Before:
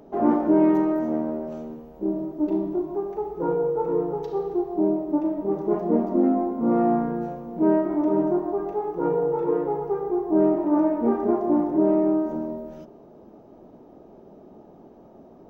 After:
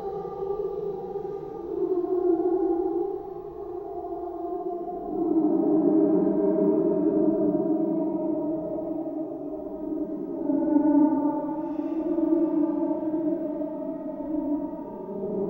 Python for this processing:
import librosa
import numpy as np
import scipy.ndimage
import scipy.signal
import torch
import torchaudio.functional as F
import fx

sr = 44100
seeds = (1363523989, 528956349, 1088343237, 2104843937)

y = fx.cheby_harmonics(x, sr, harmonics=(5,), levels_db=(-30,), full_scale_db=-8.5)
y = fx.paulstretch(y, sr, seeds[0], factor=15.0, window_s=0.05, from_s=4.43)
y = y * 10.0 ** (-2.5 / 20.0)